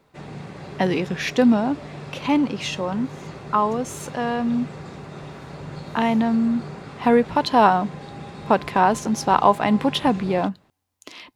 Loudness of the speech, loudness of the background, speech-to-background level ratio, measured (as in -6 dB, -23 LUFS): -21.5 LUFS, -37.0 LUFS, 15.5 dB